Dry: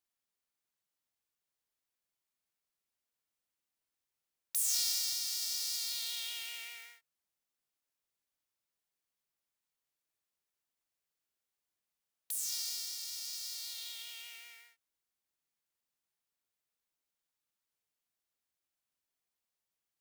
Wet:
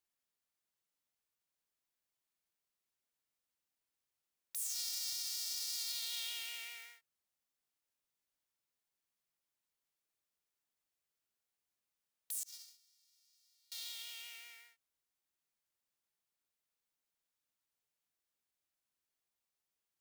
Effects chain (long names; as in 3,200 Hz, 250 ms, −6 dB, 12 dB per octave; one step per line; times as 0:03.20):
0:12.43–0:13.72: noise gate −34 dBFS, range −31 dB
brickwall limiter −27 dBFS, peak gain reduction 9.5 dB
level −1.5 dB